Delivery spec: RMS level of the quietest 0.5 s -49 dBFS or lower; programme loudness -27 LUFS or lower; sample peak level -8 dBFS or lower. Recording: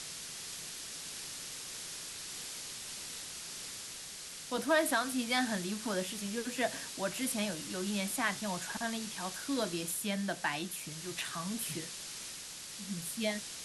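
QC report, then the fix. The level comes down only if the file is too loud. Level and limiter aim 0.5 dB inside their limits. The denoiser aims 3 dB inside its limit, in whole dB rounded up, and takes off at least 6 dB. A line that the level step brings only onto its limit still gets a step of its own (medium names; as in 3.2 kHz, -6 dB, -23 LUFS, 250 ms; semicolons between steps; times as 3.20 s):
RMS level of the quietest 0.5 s -46 dBFS: fail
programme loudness -36.0 LUFS: pass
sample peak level -16.5 dBFS: pass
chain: noise reduction 6 dB, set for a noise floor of -46 dBFS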